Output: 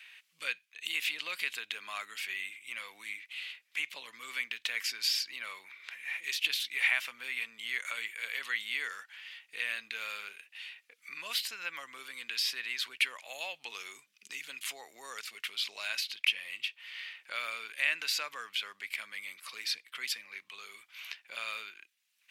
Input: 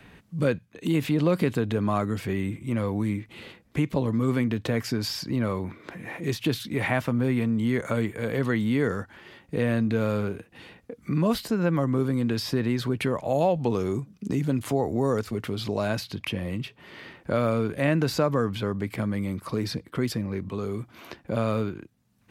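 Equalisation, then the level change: resonant high-pass 2500 Hz, resonance Q 2.1; 0.0 dB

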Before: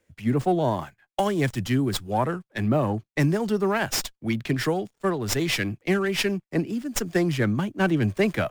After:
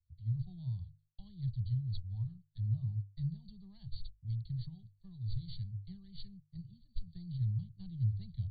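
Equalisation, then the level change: inverse Chebyshev band-stop 260–2700 Hz, stop band 50 dB; brick-wall FIR low-pass 4600 Hz; notches 50/100/150 Hz; +1.0 dB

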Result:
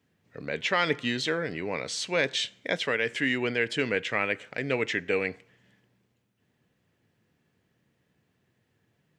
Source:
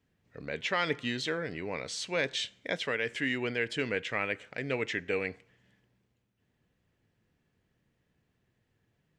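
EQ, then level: HPF 100 Hz; +4.5 dB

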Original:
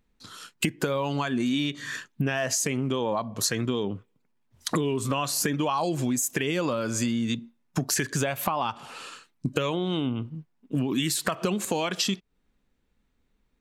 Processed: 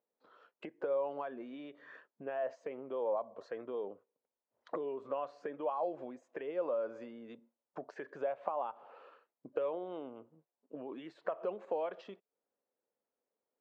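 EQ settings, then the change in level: ladder band-pass 630 Hz, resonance 50%; air absorption 93 m; +1.5 dB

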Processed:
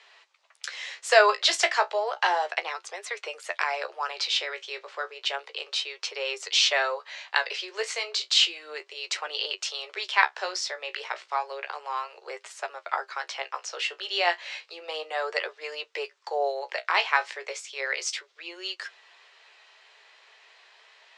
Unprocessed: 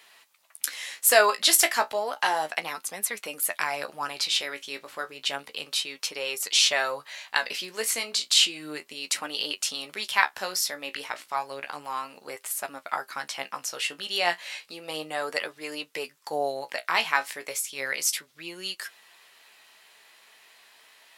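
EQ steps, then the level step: steep high-pass 360 Hz 96 dB/oct; LPF 7400 Hz 24 dB/oct; air absorption 77 m; +1.5 dB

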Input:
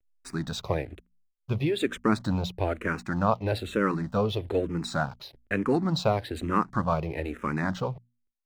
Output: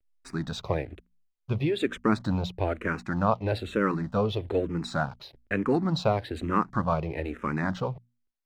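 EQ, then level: high shelf 7900 Hz -11 dB; 0.0 dB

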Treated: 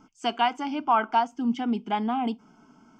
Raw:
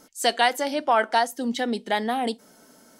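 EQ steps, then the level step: tape spacing loss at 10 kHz 30 dB; fixed phaser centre 2700 Hz, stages 8; +5.0 dB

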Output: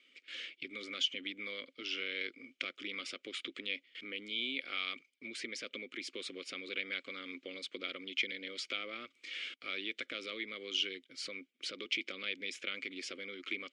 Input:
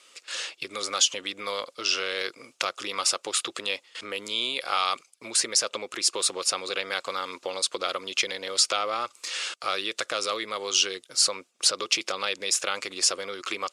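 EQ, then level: vowel filter i; bell 280 Hz -8 dB 0.59 oct; high shelf 2400 Hz -10.5 dB; +9.0 dB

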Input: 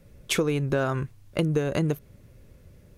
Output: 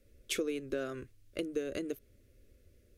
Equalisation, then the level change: fixed phaser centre 370 Hz, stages 4; -8.0 dB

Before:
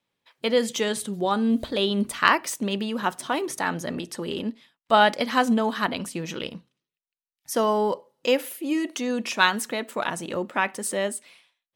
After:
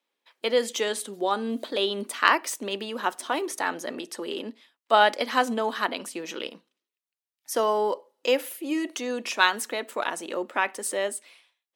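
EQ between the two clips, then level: HPF 280 Hz 24 dB/oct; -1.0 dB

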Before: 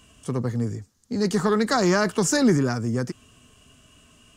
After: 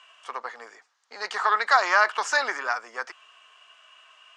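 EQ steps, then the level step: HPF 820 Hz 24 dB/oct; LPF 2800 Hz 12 dB/oct; +7.5 dB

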